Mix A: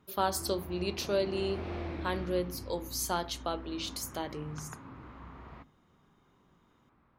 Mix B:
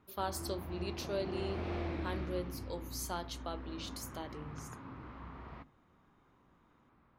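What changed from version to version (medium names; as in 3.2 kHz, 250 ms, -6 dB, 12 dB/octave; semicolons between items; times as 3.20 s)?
speech -7.5 dB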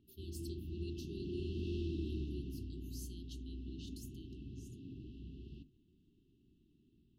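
speech -10.5 dB; master: add brick-wall FIR band-stop 420–2600 Hz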